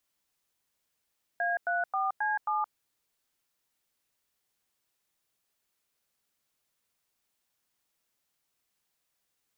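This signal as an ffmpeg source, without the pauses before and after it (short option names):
-f lavfi -i "aevalsrc='0.0355*clip(min(mod(t,0.268),0.171-mod(t,0.268))/0.002,0,1)*(eq(floor(t/0.268),0)*(sin(2*PI*697*mod(t,0.268))+sin(2*PI*1633*mod(t,0.268)))+eq(floor(t/0.268),1)*(sin(2*PI*697*mod(t,0.268))+sin(2*PI*1477*mod(t,0.268)))+eq(floor(t/0.268),2)*(sin(2*PI*770*mod(t,0.268))+sin(2*PI*1209*mod(t,0.268)))+eq(floor(t/0.268),3)*(sin(2*PI*852*mod(t,0.268))+sin(2*PI*1633*mod(t,0.268)))+eq(floor(t/0.268),4)*(sin(2*PI*852*mod(t,0.268))+sin(2*PI*1209*mod(t,0.268))))':d=1.34:s=44100"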